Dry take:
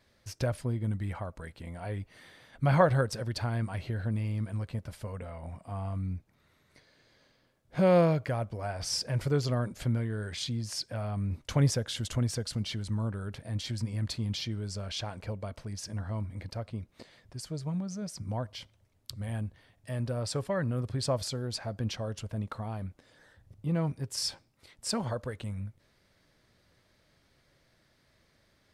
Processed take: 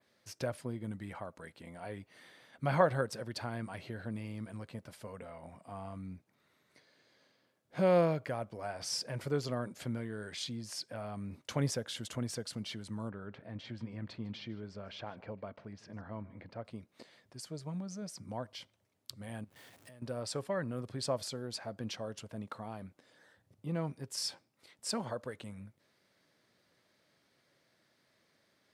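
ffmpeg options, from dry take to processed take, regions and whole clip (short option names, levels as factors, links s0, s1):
-filter_complex "[0:a]asettb=1/sr,asplit=3[s0][s1][s2];[s0]atrim=end=13.094[s3];[s1]atrim=start=13.09:end=16.65,asetpts=PTS-STARTPTS,afade=t=in:d=0.004:c=qsin,afade=t=out:st=3.556:d=0.004:c=qsin,lowpass=2400,aecho=1:1:152:0.0891,atrim=end_sample=156996[s4];[s2]atrim=start=16.646[s5];[s3][s4]acrossfade=d=0.004:c1=hsin:c2=qsin[s6];[s6][s5]acrossfade=d=0.004:c1=qsin:c2=hsin,asettb=1/sr,asplit=3[s7][s8][s9];[s7]atrim=end=19.444[s10];[s8]atrim=start=19.44:end=20.02,asetpts=PTS-STARTPTS,afade=t=in:d=0.004:c=qsin,afade=t=out:st=0.576:d=0.004:c=qsin,aeval=exprs='val(0)+0.5*0.00316*sgn(val(0))':c=same,highshelf=f=9500:g=5,acompressor=threshold=0.00447:ratio=6:attack=3.2:release=140:knee=1:detection=peak[s11];[s9]atrim=start=20.016[s12];[s10][s11]acrossfade=d=0.004:c1=hsin:c2=qsin[s13];[s13][s12]acrossfade=d=0.004:c1=qsin:c2=hsin,highpass=180,adynamicequalizer=threshold=0.00355:dfrequency=5400:dqfactor=0.83:tfrequency=5400:tqfactor=0.83:attack=5:release=100:ratio=0.375:range=2:mode=cutabove:tftype=bell,volume=0.668"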